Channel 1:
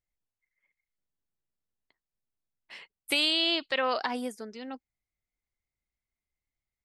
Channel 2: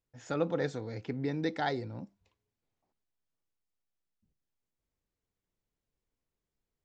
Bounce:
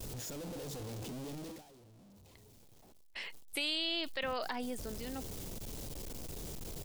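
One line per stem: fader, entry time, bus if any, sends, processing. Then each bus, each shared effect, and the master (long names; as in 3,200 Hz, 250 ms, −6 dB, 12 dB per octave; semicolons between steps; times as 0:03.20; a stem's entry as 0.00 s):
+2.5 dB, 0.45 s, no send, automatic ducking −12 dB, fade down 0.70 s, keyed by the second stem
0:01.30 −10 dB → 0:01.80 −22.5 dB → 0:03.19 −22.5 dB → 0:03.89 −10 dB, 0.00 s, no send, sign of each sample alone; parametric band 1,800 Hz −10 dB 1.5 octaves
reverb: not used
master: noise gate −58 dBFS, range −21 dB; parametric band 1,100 Hz −3 dB 0.84 octaves; envelope flattener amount 50%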